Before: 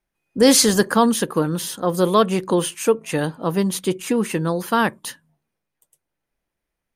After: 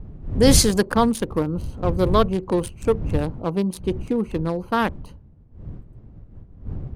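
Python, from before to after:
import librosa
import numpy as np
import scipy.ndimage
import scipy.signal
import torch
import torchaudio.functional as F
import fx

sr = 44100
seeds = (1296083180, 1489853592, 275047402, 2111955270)

y = fx.wiener(x, sr, points=25)
y = fx.dmg_wind(y, sr, seeds[0], corner_hz=100.0, level_db=-26.0)
y = y * librosa.db_to_amplitude(-2.0)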